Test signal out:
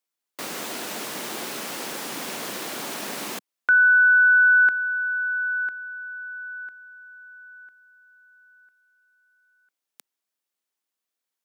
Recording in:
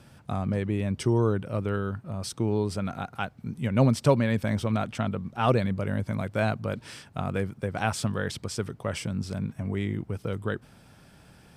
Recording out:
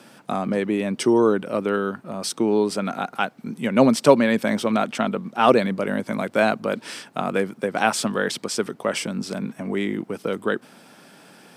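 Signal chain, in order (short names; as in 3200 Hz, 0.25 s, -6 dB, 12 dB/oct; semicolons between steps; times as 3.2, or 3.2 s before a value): HPF 210 Hz 24 dB/oct; gain +8.5 dB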